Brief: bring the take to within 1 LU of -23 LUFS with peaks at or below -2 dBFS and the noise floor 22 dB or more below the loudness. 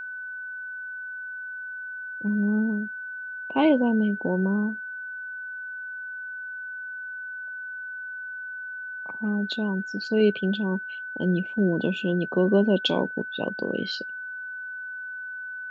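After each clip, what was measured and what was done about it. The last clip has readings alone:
steady tone 1.5 kHz; tone level -33 dBFS; loudness -28.0 LUFS; peak level -9.5 dBFS; loudness target -23.0 LUFS
-> band-stop 1.5 kHz, Q 30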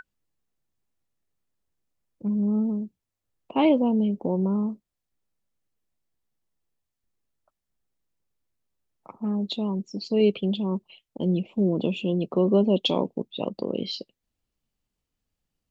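steady tone not found; loudness -25.5 LUFS; peak level -9.5 dBFS; loudness target -23.0 LUFS
-> trim +2.5 dB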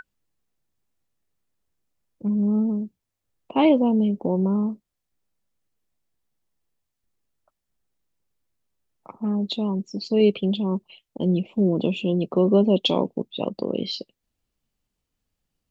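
loudness -23.0 LUFS; peak level -7.0 dBFS; noise floor -82 dBFS

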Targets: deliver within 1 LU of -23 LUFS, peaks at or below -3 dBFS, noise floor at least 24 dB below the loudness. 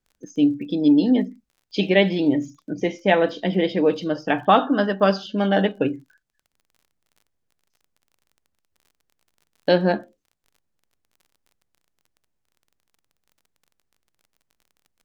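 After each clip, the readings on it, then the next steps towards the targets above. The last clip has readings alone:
tick rate 31 per s; loudness -21.0 LUFS; peak level -2.5 dBFS; loudness target -23.0 LUFS
-> de-click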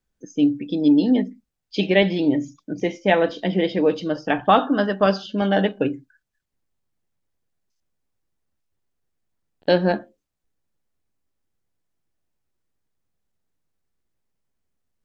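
tick rate 0 per s; loudness -21.0 LUFS; peak level -2.5 dBFS; loudness target -23.0 LUFS
-> trim -2 dB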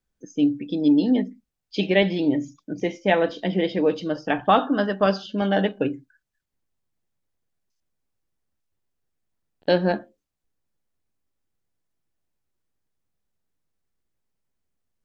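loudness -23.0 LUFS; peak level -4.5 dBFS; noise floor -81 dBFS

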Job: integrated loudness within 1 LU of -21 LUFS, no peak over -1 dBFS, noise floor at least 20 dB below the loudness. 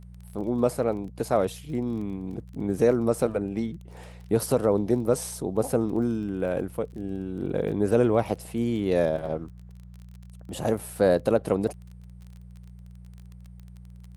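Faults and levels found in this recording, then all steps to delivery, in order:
tick rate 25 per s; hum 60 Hz; highest harmonic 180 Hz; hum level -41 dBFS; loudness -26.5 LUFS; peak level -8.5 dBFS; loudness target -21.0 LUFS
-> de-click; de-hum 60 Hz, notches 3; trim +5.5 dB

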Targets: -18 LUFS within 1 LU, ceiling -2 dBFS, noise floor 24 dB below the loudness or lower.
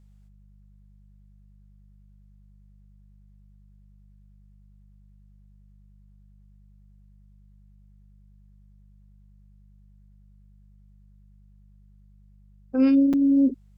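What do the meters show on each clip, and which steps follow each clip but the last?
dropouts 1; longest dropout 5.8 ms; hum 50 Hz; highest harmonic 200 Hz; hum level -51 dBFS; loudness -20.5 LUFS; peak level -11.0 dBFS; loudness target -18.0 LUFS
-> interpolate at 13.13 s, 5.8 ms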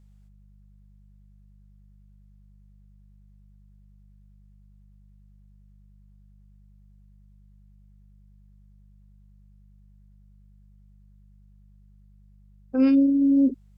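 dropouts 0; hum 50 Hz; highest harmonic 200 Hz; hum level -51 dBFS
-> de-hum 50 Hz, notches 4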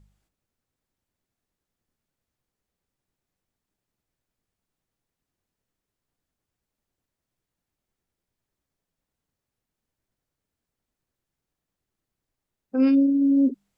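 hum not found; loudness -20.0 LUFS; peak level -11.0 dBFS; loudness target -18.0 LUFS
-> trim +2 dB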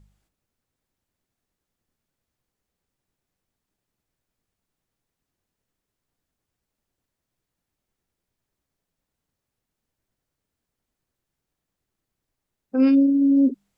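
loudness -18.0 LUFS; peak level -9.0 dBFS; noise floor -85 dBFS

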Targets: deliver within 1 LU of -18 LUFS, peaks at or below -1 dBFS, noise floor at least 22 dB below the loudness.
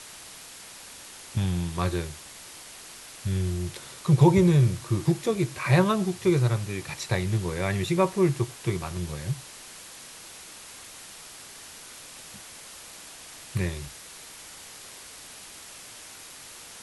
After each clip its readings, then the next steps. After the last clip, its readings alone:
noise floor -45 dBFS; noise floor target -48 dBFS; loudness -26.0 LUFS; peak level -7.0 dBFS; loudness target -18.0 LUFS
-> noise print and reduce 6 dB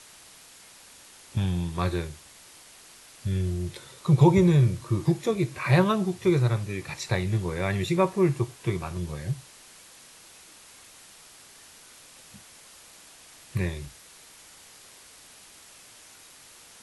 noise floor -51 dBFS; loudness -26.0 LUFS; peak level -7.0 dBFS; loudness target -18.0 LUFS
-> trim +8 dB; peak limiter -1 dBFS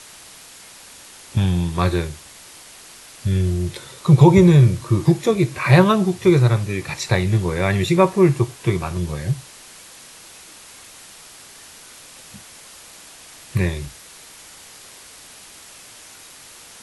loudness -18.0 LUFS; peak level -1.0 dBFS; noise floor -43 dBFS

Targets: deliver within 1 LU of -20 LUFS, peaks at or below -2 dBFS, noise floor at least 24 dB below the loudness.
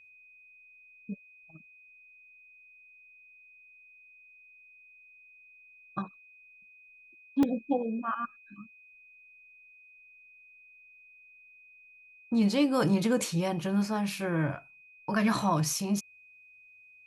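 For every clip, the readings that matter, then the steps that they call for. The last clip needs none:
dropouts 1; longest dropout 2.1 ms; steady tone 2.5 kHz; tone level -54 dBFS; loudness -30.0 LUFS; peak level -14.5 dBFS; loudness target -20.0 LUFS
-> interpolate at 7.43 s, 2.1 ms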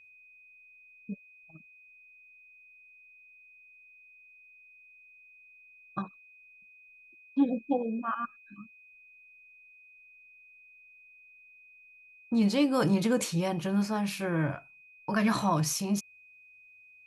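dropouts 0; steady tone 2.5 kHz; tone level -54 dBFS
-> band-stop 2.5 kHz, Q 30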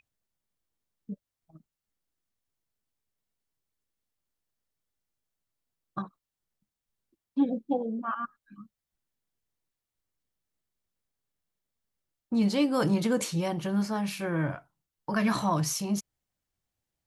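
steady tone not found; loudness -29.5 LUFS; peak level -14.5 dBFS; loudness target -20.0 LUFS
-> trim +9.5 dB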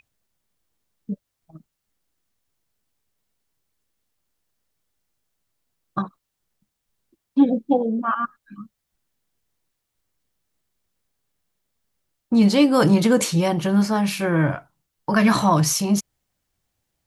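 loudness -20.0 LUFS; peak level -5.0 dBFS; noise floor -80 dBFS

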